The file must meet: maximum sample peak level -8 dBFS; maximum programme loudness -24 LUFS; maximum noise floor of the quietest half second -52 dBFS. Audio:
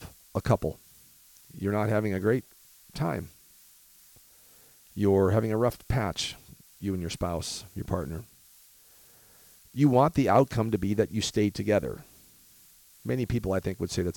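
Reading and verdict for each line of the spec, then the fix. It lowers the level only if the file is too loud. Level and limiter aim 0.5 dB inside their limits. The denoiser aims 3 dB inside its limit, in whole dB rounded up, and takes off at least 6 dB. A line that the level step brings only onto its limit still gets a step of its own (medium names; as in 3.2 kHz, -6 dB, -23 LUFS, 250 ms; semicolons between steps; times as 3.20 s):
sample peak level -11.0 dBFS: pass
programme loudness -28.0 LUFS: pass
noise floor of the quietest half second -57 dBFS: pass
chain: none needed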